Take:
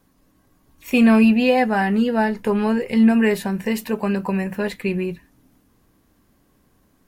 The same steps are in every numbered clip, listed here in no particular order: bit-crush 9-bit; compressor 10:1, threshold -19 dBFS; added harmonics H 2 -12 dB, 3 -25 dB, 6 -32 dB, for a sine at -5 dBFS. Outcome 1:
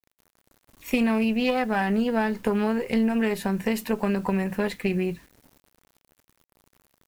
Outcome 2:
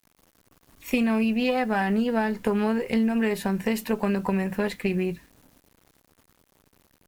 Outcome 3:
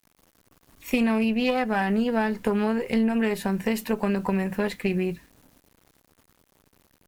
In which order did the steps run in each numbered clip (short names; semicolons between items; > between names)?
added harmonics > compressor > bit-crush; compressor > bit-crush > added harmonics; bit-crush > added harmonics > compressor